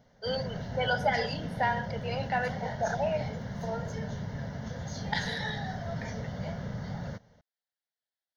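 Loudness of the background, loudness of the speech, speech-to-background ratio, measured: −37.5 LKFS, −33.0 LKFS, 4.5 dB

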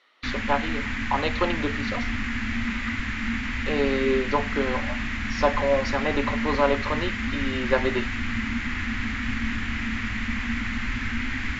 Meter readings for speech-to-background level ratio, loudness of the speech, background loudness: 1.5 dB, −27.0 LKFS, −28.5 LKFS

